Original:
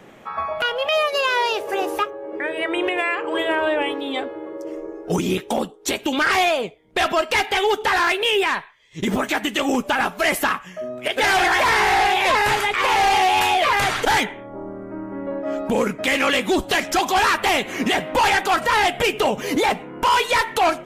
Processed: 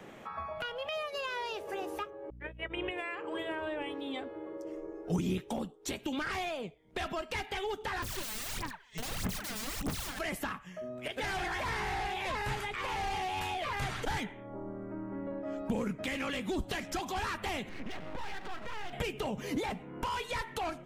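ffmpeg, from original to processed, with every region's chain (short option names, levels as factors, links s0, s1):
-filter_complex "[0:a]asettb=1/sr,asplit=3[s0][s1][s2];[s0]atrim=end=2.304[s3];[s1]atrim=start=2.3:end=2.91,asetpts=PTS-STARTPTS,afade=t=in:d=0.004:c=qsin,afade=t=out:st=0.606:d=0.004:c=qsin,agate=range=0.0112:threshold=0.0631:ratio=16:release=100:detection=peak,highshelf=f=3800:t=q:w=3:g=-7,aeval=exprs='val(0)+0.00631*(sin(2*PI*60*n/s)+sin(2*PI*2*60*n/s)/2+sin(2*PI*3*60*n/s)/3+sin(2*PI*4*60*n/s)/4+sin(2*PI*5*60*n/s)/5)':c=same[s4];[s2]atrim=start=2.906[s5];[s3][s4]acrossfade=d=0.004:c1=hsin:c2=qsin[s6];[s6][s5]acrossfade=d=0.004:c1=qsin:c2=hsin,asettb=1/sr,asplit=3[s7][s8][s9];[s7]atrim=end=8.024[s10];[s8]atrim=start=8.02:end=10.19,asetpts=PTS-STARTPTS,afade=t=in:d=0.004:c=qsin,afade=t=out:st=2.166:d=0.004:c=qsin,aecho=1:1:170:0.266,atrim=end_sample=95697,aeval=exprs='(mod(15.8*val(0)+1,2)-1)/15.8':c=same,aphaser=in_gain=1:out_gain=1:delay=4.7:decay=0.76:speed=1.6:type=sinusoidal[s11];[s9]atrim=start=10.186[s12];[s10][s11]acrossfade=d=0.004:c1=hsin:c2=qsin[s13];[s13][s12]acrossfade=d=0.004:c1=qsin:c2=hsin,asettb=1/sr,asplit=3[s14][s15][s16];[s14]atrim=end=17.694[s17];[s15]atrim=start=17.69:end=18.93,asetpts=PTS-STARTPTS,afade=t=in:d=0.004:c=qsin,afade=t=out:st=1.236:d=0.004:c=qsin,lowpass=3100,acompressor=threshold=0.0501:ratio=4:attack=3.2:release=140:knee=1:detection=peak,aeval=exprs='max(val(0),0)':c=same[s18];[s16]atrim=start=18.926[s19];[s17][s18]acrossfade=d=0.004:c1=hsin:c2=qsin[s20];[s20][s19]acrossfade=d=0.004:c1=qsin:c2=hsin,equalizer=f=12000:t=o:w=0.38:g=-2,acrossover=split=200[s21][s22];[s22]acompressor=threshold=0.00794:ratio=2[s23];[s21][s23]amix=inputs=2:normalize=0,volume=0.631"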